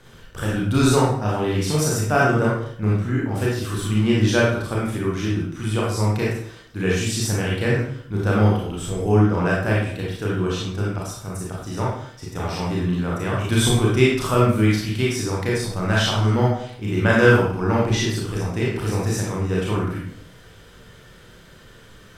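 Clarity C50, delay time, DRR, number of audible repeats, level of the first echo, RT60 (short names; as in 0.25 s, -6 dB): 0.5 dB, none, -5.0 dB, none, none, 0.60 s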